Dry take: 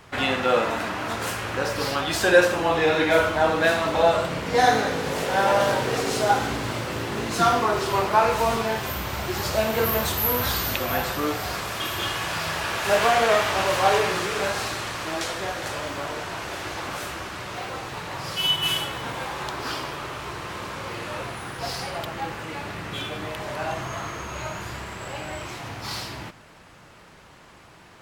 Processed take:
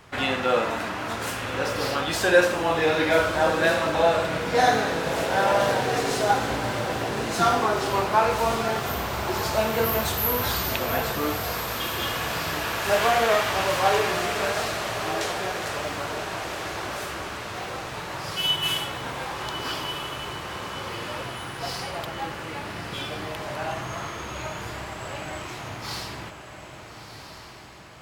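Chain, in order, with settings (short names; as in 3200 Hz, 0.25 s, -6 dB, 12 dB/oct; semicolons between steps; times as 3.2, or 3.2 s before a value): diffused feedback echo 1.309 s, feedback 48%, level -9 dB; gain -1.5 dB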